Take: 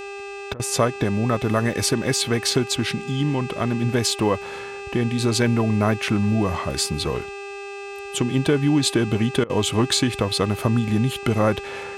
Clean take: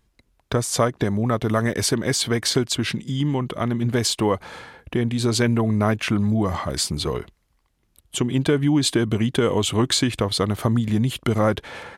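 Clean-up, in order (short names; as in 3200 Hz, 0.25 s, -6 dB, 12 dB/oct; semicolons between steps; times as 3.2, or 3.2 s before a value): de-hum 399.5 Hz, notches 22; notch 2600 Hz, Q 30; interpolate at 0.54/9.44, 55 ms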